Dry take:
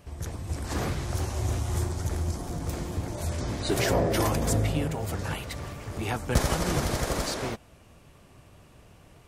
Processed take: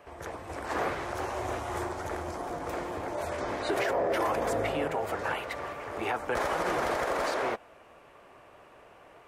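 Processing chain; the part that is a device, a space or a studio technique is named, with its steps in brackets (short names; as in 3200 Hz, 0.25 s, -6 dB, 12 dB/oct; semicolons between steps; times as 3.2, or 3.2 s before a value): DJ mixer with the lows and highs turned down (three-band isolator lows -22 dB, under 380 Hz, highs -16 dB, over 2400 Hz; limiter -27 dBFS, peak gain reduction 9.5 dB); gain +7 dB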